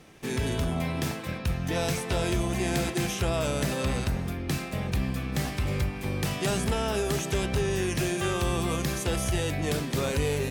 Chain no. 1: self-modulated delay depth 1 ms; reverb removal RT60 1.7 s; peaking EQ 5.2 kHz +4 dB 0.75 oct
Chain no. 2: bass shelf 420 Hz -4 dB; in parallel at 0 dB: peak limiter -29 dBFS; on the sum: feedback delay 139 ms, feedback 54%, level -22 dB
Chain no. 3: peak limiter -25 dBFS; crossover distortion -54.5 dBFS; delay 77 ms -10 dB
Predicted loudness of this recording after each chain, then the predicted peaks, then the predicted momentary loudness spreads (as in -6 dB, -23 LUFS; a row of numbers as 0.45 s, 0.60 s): -31.5 LUFS, -27.5 LUFS, -33.5 LUFS; -17.0 dBFS, -15.5 dBFS, -23.0 dBFS; 4 LU, 3 LU, 2 LU